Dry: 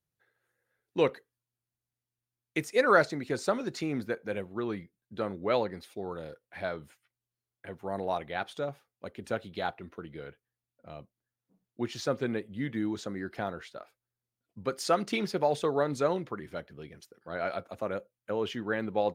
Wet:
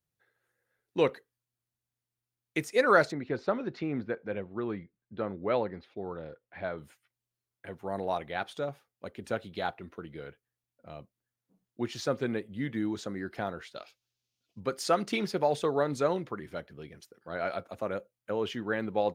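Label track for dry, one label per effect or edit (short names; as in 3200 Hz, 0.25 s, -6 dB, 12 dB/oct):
3.120000	6.780000	air absorption 280 m
13.750000	14.600000	band shelf 4000 Hz +13 dB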